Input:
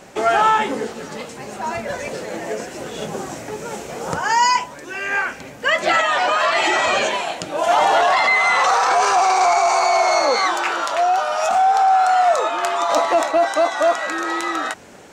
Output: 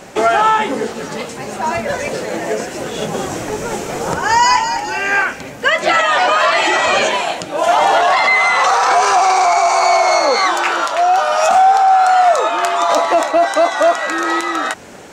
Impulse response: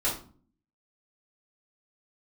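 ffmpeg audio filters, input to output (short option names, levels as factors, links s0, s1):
-filter_complex "[0:a]alimiter=limit=0.316:level=0:latency=1:release=469,asettb=1/sr,asplit=3[s0][s1][s2];[s0]atrim=end=2.934[s3];[s1]atrim=start=2.93:end=5.24,asetpts=PTS-STARTPTS,afade=t=in:d=0.004:c=qsin,afade=t=out:st=2.306:d=0.004:c=qsin,asplit=7[s4][s5][s6][s7][s8][s9][s10];[s5]adelay=209,afreqshift=-64,volume=0.422[s11];[s6]adelay=418,afreqshift=-128,volume=0.216[s12];[s7]adelay=627,afreqshift=-192,volume=0.11[s13];[s8]adelay=836,afreqshift=-256,volume=0.0562[s14];[s9]adelay=1045,afreqshift=-320,volume=0.0285[s15];[s10]adelay=1254,afreqshift=-384,volume=0.0146[s16];[s4][s11][s12][s13][s14][s15][s16]amix=inputs=7:normalize=0,atrim=end_sample=101871[s17];[s2]atrim=start=5.236[s18];[s3][s17]acrossfade=d=0.004:c1=hsin:c2=qsin[s19];[s19][s18]acrossfade=d=0.004:c1=qsin:c2=hsin,volume=2.11"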